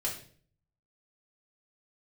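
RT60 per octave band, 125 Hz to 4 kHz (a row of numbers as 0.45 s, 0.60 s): 0.85 s, 0.65 s, 0.55 s, 0.40 s, 0.45 s, 0.45 s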